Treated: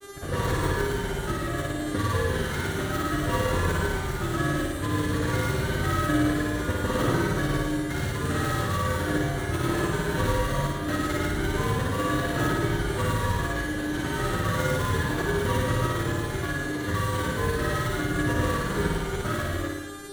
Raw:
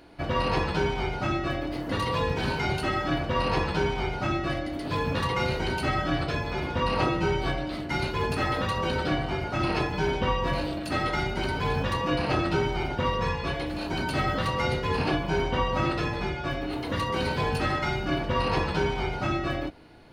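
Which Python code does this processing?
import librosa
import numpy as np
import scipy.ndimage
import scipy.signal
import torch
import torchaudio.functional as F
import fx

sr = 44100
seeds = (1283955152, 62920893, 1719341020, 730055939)

p1 = fx.dead_time(x, sr, dead_ms=0.17)
p2 = fx.peak_eq(p1, sr, hz=1700.0, db=5.5, octaves=0.37)
p3 = fx.dmg_buzz(p2, sr, base_hz=400.0, harmonics=31, level_db=-40.0, tilt_db=-4, odd_only=False)
p4 = fx.graphic_eq_31(p3, sr, hz=(100, 800, 2500, 5000), db=(6, -11, -11, -11))
p5 = fx.granulator(p4, sr, seeds[0], grain_ms=100.0, per_s=20.0, spray_ms=100.0, spread_st=0)
p6 = fx.comb_fb(p5, sr, f0_hz=60.0, decay_s=1.6, harmonics='all', damping=0.0, mix_pct=60)
p7 = p6 + fx.room_flutter(p6, sr, wall_m=9.7, rt60_s=1.0, dry=0)
y = F.gain(torch.from_numpy(p7), 7.0).numpy()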